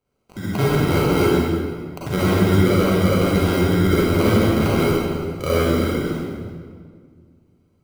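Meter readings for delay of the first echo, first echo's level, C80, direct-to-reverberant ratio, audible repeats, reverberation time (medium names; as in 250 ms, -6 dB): no echo, no echo, -1.5 dB, -8.0 dB, no echo, 1.9 s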